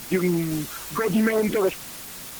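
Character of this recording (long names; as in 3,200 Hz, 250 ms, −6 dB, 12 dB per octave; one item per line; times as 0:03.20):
phaser sweep stages 8, 3.8 Hz, lowest notch 770–2,400 Hz
a quantiser's noise floor 6 bits, dither triangular
Opus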